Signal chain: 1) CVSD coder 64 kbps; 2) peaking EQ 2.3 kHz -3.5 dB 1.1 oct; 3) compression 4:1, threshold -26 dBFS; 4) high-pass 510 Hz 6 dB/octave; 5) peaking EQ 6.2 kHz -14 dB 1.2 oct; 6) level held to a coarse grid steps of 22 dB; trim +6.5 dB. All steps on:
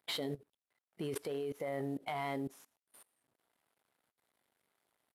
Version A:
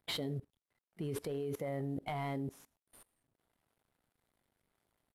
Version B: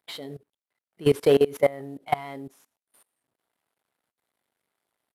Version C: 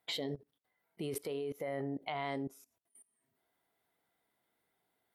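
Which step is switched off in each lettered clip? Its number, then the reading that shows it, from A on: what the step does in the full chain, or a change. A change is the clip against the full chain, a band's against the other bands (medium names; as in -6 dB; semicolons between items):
4, 125 Hz band +7.0 dB; 3, mean gain reduction 5.0 dB; 1, crest factor change +3.5 dB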